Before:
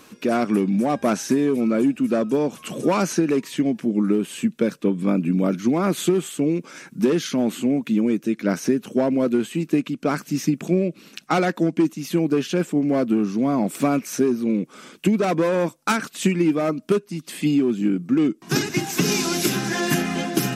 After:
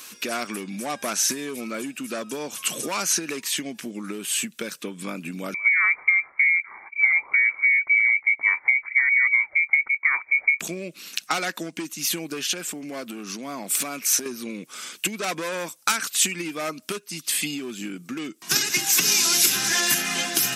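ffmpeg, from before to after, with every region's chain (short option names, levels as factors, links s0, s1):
-filter_complex "[0:a]asettb=1/sr,asplit=3[s0][s1][s2];[s0]atrim=end=5.544[s3];[s1]atrim=start=5.54:end=10.6,asetpts=PTS-STARTPTS,afade=t=in:d=0.004:c=qsin,afade=t=out:st=5.056:d=0.004:c=qsin,lowpass=f=2100:t=q:w=0.5098,lowpass=f=2100:t=q:w=0.6013,lowpass=f=2100:t=q:w=0.9,lowpass=f=2100:t=q:w=2.563,afreqshift=-2500,acrossover=split=2300[s4][s5];[s4]aeval=exprs='val(0)*(1-0.5/2+0.5/2*cos(2*PI*6.7*n/s))':c=same[s6];[s5]aeval=exprs='val(0)*(1-0.5/2-0.5/2*cos(2*PI*6.7*n/s))':c=same[s7];[s6][s7]amix=inputs=2:normalize=0[s8];[s2]atrim=start=10.596[s9];[s3][s8]acrossfade=d=0.004:c1=hsin:c2=qsin[s10];[s10][s9]acrossfade=d=0.004:c1=qsin:c2=hsin,asettb=1/sr,asplit=3[s11][s12][s13];[s11]atrim=end=12.434[s14];[s12]atrim=start=12.43:end=14.26,asetpts=PTS-STARTPTS,afade=t=in:d=0.004:c=qsin,afade=t=out:st=1.826:d=0.004:c=qsin,highpass=130,acompressor=threshold=0.0631:ratio=5:attack=3.2:release=140:knee=1:detection=peak[s15];[s13]atrim=start=14.256[s16];[s14][s15]acrossfade=d=0.004:c1=hsin:c2=qsin[s17];[s17][s16]acrossfade=d=0.004:c1=qsin:c2=hsin,highshelf=f=4900:g=7,acompressor=threshold=0.0891:ratio=6,tiltshelf=f=820:g=-9.5,volume=0.841"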